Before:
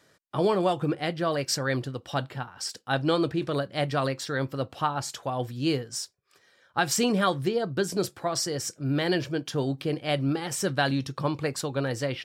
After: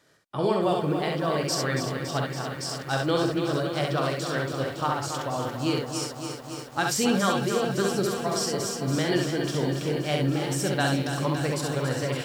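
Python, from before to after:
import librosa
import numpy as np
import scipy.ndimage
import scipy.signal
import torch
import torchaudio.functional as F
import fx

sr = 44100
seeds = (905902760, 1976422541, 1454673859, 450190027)

y = fx.room_early_taps(x, sr, ms=(46, 66), db=(-8.5, -3.5))
y = fx.echo_crushed(y, sr, ms=281, feedback_pct=80, bits=8, wet_db=-8.0)
y = y * 10.0 ** (-2.0 / 20.0)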